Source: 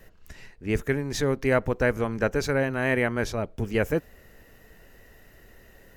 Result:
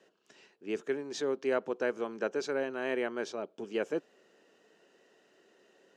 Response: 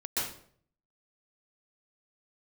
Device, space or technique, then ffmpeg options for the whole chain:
television speaker: -af "highpass=frequency=230:width=0.5412,highpass=frequency=230:width=1.3066,equalizer=frequency=250:width_type=q:width=4:gain=-3,equalizer=frequency=380:width_type=q:width=4:gain=5,equalizer=frequency=2000:width_type=q:width=4:gain=-8,equalizer=frequency=3100:width_type=q:width=4:gain=4,lowpass=frequency=7600:width=0.5412,lowpass=frequency=7600:width=1.3066,volume=-8dB"

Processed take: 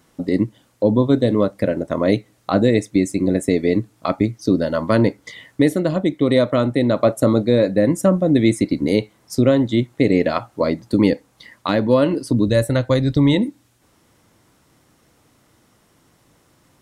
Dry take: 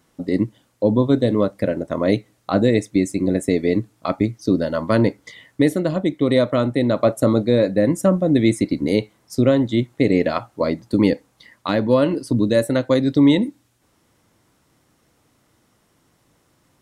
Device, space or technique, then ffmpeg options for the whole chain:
parallel compression: -filter_complex "[0:a]asplit=2[link_01][link_02];[link_02]acompressor=threshold=-28dB:ratio=6,volume=-4dB[link_03];[link_01][link_03]amix=inputs=2:normalize=0,asplit=3[link_04][link_05][link_06];[link_04]afade=type=out:start_time=12.46:duration=0.02[link_07];[link_05]asubboost=boost=7:cutoff=98,afade=type=in:start_time=12.46:duration=0.02,afade=type=out:start_time=13.33:duration=0.02[link_08];[link_06]afade=type=in:start_time=13.33:duration=0.02[link_09];[link_07][link_08][link_09]amix=inputs=3:normalize=0"

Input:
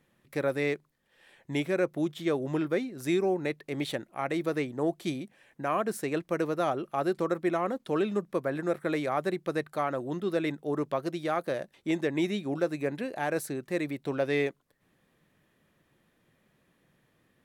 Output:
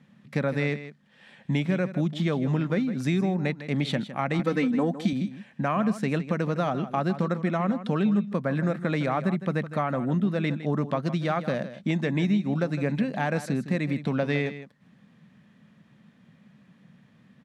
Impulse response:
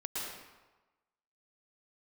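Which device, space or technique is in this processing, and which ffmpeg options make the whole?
jukebox: -filter_complex "[0:a]highpass=140,asettb=1/sr,asplit=3[link_01][link_02][link_03];[link_01]atrim=end=4.394[link_04];[link_02]atrim=start=4.39:end=5.13,asetpts=PTS-STARTPTS,afade=type=in:duration=0.004:curve=qsin,afade=type=out:start_time=0.736:duration=0.004:curve=qsin,aecho=1:1:3.9:0.91,atrim=end_sample=32634[link_05];[link_03]atrim=start=5.126[link_06];[link_04][link_05]acrossfade=duration=0.004:curve1=hsin:curve2=qsin[link_07];[link_07][link_06]acrossfade=duration=0.004:curve1=qsin:curve2=hsin,asettb=1/sr,asplit=3[link_08][link_09][link_10];[link_08]atrim=end=9.064[link_11];[link_09]atrim=start=9.06:end=10.36,asetpts=PTS-STARTPTS,afade=type=in:duration=0.004:curve=qsin,afade=type=out:start_time=1.296:duration=0.004:curve=qsin,equalizer=frequency=4700:width=1.5:gain=-6[link_12];[link_10]atrim=start=10.356[link_13];[link_11][link_12]acrossfade=duration=0.004:curve1=hsin:curve2=qsin[link_14];[link_14][link_13]acrossfade=duration=0.004:curve1=qsin:curve2=hsin,lowpass=5700,lowshelf=frequency=270:width_type=q:width=3:gain=7.5,acompressor=threshold=-28dB:ratio=5,aecho=1:1:159:0.224,volume=6.5dB"

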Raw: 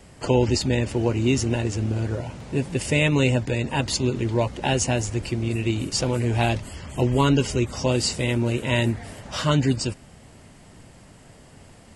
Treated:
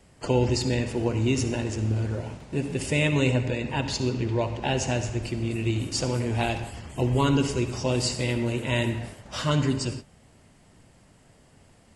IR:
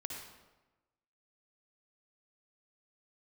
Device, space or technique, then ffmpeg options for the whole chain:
keyed gated reverb: -filter_complex "[0:a]asettb=1/sr,asplit=3[link_01][link_02][link_03];[link_01]atrim=end=3.314[link_04];[link_02]atrim=start=3.31:end=5.22,asetpts=PTS-STARTPTS,afade=type=in:duration=0.004:curve=qsin,afade=type=out:start_time=1.906:duration=0.004:curve=qsin,lowpass=6400[link_05];[link_03]atrim=start=5.216[link_06];[link_04][link_05]acrossfade=duration=0.004:curve1=hsin:curve2=qsin[link_07];[link_07][link_06]acrossfade=duration=0.004:curve1=qsin:curve2=hsin,asplit=3[link_08][link_09][link_10];[1:a]atrim=start_sample=2205[link_11];[link_09][link_11]afir=irnorm=-1:irlink=0[link_12];[link_10]apad=whole_len=527277[link_13];[link_12][link_13]sidechaingate=range=-33dB:threshold=-36dB:ratio=16:detection=peak,volume=0dB[link_14];[link_08][link_14]amix=inputs=2:normalize=0,volume=-8dB"

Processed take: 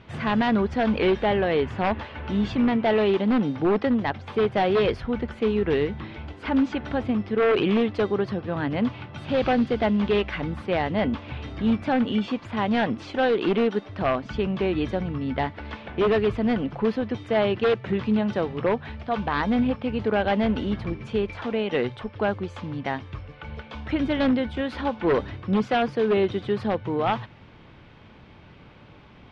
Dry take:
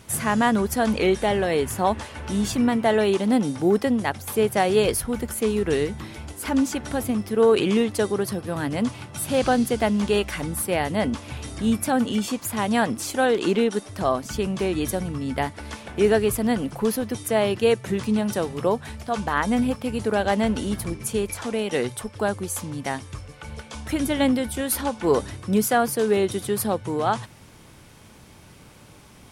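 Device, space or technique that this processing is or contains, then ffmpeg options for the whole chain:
synthesiser wavefolder: -af "aeval=exprs='0.178*(abs(mod(val(0)/0.178+3,4)-2)-1)':channel_layout=same,lowpass=frequency=3500:width=0.5412,lowpass=frequency=3500:width=1.3066"

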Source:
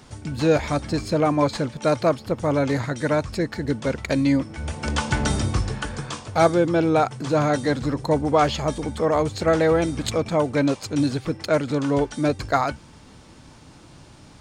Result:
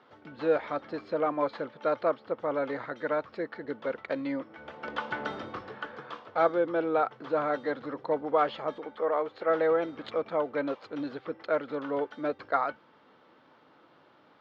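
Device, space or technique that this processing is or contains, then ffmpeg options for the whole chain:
phone earpiece: -filter_complex "[0:a]asettb=1/sr,asplit=3[link_01][link_02][link_03];[link_01]atrim=end=8.794[link_04];[link_02]atrim=start=8.79:end=9.5,asetpts=PTS-STARTPTS,afade=type=in:duration=0.004:curve=qsin,afade=type=out:start_time=0.706:duration=0.004:curve=qsin,bass=frequency=250:gain=-9,treble=frequency=4000:gain=-5[link_05];[link_03]atrim=start=9.496[link_06];[link_04][link_05]acrossfade=duration=0.004:curve1=hsin:curve2=qsin[link_07];[link_07][link_06]acrossfade=duration=0.004:curve1=qsin:curve2=hsin,highpass=360,equalizer=frequency=500:width_type=q:width=4:gain=4,equalizer=frequency=1300:width_type=q:width=4:gain=5,equalizer=frequency=2500:width_type=q:width=4:gain=-6,lowpass=frequency=3200:width=0.5412,lowpass=frequency=3200:width=1.3066,volume=-8dB"

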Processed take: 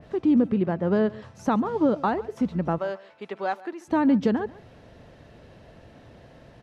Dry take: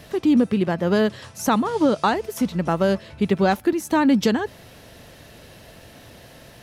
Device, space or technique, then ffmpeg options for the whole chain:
through cloth: -filter_complex "[0:a]asettb=1/sr,asplit=3[link_01][link_02][link_03];[link_01]atrim=end=2.784[link_04];[link_02]atrim=start=2.78:end=3.88,asetpts=PTS-STARTPTS,afade=type=in:duration=0.004:curve=qsin,afade=type=out:start_time=1.096:duration=0.004:curve=qsin,highpass=660[link_05];[link_03]atrim=start=3.876[link_06];[link_04][link_05]acrossfade=duration=0.004:curve1=hsin:curve2=qsin[link_07];[link_07][link_06]acrossfade=duration=0.004:curve1=qsin:curve2=hsin,lowpass=7300,highshelf=frequency=2200:gain=-14,aecho=1:1:139:0.1,adynamicequalizer=threshold=0.01:dfrequency=2700:dqfactor=0.7:tfrequency=2700:tqfactor=0.7:attack=5:release=100:ratio=0.375:range=2.5:mode=cutabove:tftype=highshelf,volume=-2.5dB"

